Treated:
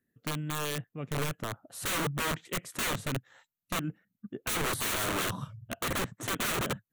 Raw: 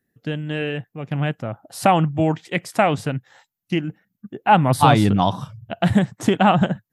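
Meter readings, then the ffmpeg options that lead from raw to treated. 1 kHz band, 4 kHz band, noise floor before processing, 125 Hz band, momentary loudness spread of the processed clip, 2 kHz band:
-17.5 dB, -5.0 dB, -81 dBFS, -15.5 dB, 10 LU, -7.0 dB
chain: -af "aeval=exprs='(mod(8.41*val(0)+1,2)-1)/8.41':c=same,equalizer=f=250:t=o:w=0.33:g=3,equalizer=f=800:t=o:w=0.33:g=-7,equalizer=f=1.25k:t=o:w=0.33:g=3,equalizer=f=5k:t=o:w=0.33:g=-9,volume=-7dB"

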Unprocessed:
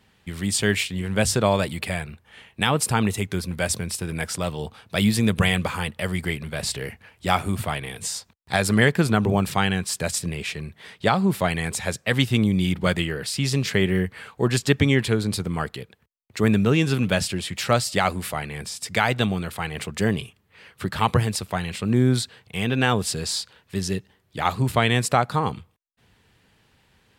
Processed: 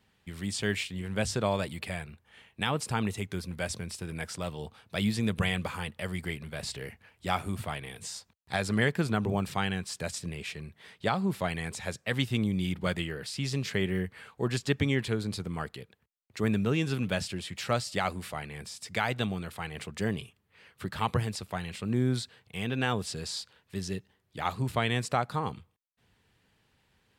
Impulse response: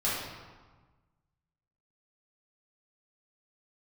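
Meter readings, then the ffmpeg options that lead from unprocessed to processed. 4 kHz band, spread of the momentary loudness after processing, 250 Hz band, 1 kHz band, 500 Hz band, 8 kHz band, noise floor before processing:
-8.5 dB, 11 LU, -8.5 dB, -8.5 dB, -8.5 dB, -12.0 dB, -64 dBFS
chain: -filter_complex "[0:a]acrossover=split=7800[a][b];[b]acompressor=threshold=-40dB:ratio=4:attack=1:release=60[c];[a][c]amix=inputs=2:normalize=0,volume=-8.5dB"

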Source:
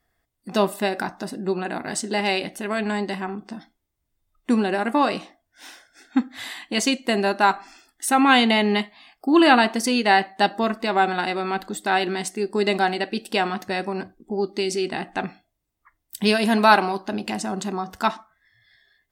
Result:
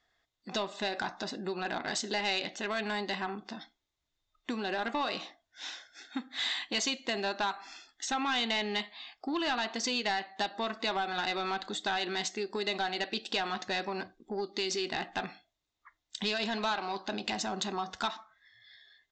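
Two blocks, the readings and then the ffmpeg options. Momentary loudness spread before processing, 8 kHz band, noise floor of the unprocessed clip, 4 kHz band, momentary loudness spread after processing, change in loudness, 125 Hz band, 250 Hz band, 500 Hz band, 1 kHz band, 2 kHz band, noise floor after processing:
15 LU, -7.5 dB, -77 dBFS, -5.5 dB, 11 LU, -11.5 dB, -14.0 dB, -15.5 dB, -12.5 dB, -12.5 dB, -10.5 dB, -84 dBFS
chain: -af "acompressor=threshold=-24dB:ratio=6,lowshelf=f=410:g=-11.5,aresample=16000,asoftclip=type=tanh:threshold=-24.5dB,aresample=44100,equalizer=f=3.7k:t=o:w=0.35:g=7.5"

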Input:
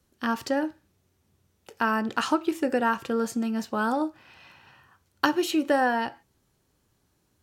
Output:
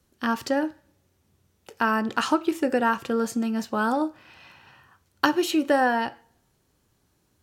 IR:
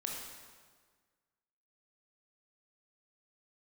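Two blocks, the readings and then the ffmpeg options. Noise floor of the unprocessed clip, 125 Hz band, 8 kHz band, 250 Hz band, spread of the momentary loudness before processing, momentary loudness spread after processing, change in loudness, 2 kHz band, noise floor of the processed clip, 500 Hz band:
-71 dBFS, n/a, +2.0 dB, +2.0 dB, 6 LU, 6 LU, +2.0 dB, +2.0 dB, -69 dBFS, +2.0 dB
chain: -filter_complex "[0:a]asplit=2[a][b];[1:a]atrim=start_sample=2205,asetrate=83790,aresample=44100[c];[b][c]afir=irnorm=-1:irlink=0,volume=-19.5dB[d];[a][d]amix=inputs=2:normalize=0,volume=1.5dB"

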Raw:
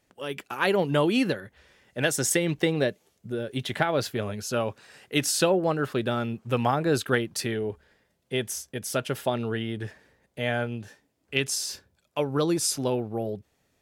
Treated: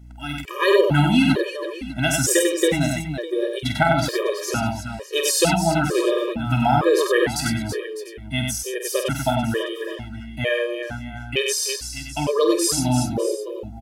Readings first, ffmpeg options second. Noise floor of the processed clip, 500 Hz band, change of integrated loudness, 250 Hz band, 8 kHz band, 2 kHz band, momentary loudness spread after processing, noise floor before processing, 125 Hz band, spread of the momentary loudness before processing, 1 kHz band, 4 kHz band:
-36 dBFS, +6.0 dB, +6.0 dB, +6.0 dB, +6.5 dB, +5.5 dB, 12 LU, -73 dBFS, +7.0 dB, 12 LU, +7.0 dB, +6.5 dB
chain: -af "aeval=exprs='val(0)+0.00355*(sin(2*PI*60*n/s)+sin(2*PI*2*60*n/s)/2+sin(2*PI*3*60*n/s)/3+sin(2*PI*4*60*n/s)/4+sin(2*PI*5*60*n/s)/5)':c=same,aecho=1:1:48|96|331|603|696:0.422|0.631|0.376|0.188|0.119,afftfilt=real='re*gt(sin(2*PI*1.1*pts/sr)*(1-2*mod(floor(b*sr/1024/320),2)),0)':imag='im*gt(sin(2*PI*1.1*pts/sr)*(1-2*mod(floor(b*sr/1024/320),2)),0)':win_size=1024:overlap=0.75,volume=7dB"

